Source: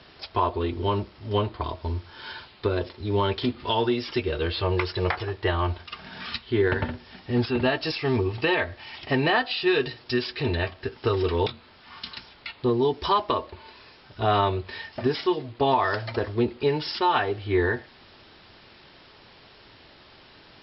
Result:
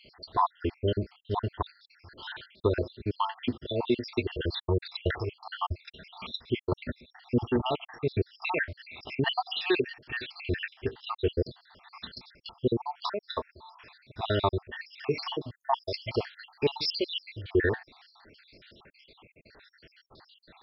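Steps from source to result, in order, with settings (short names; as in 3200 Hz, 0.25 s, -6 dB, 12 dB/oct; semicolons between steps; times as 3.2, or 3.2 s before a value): random spectral dropouts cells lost 71%; 14.86–17.37 high shelf 2800 Hz +8 dB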